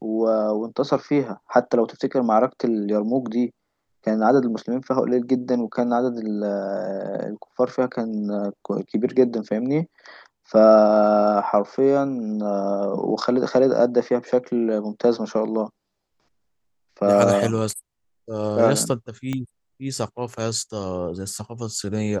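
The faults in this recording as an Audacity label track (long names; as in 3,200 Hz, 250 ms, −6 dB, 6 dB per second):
19.330000	19.330000	click −15 dBFS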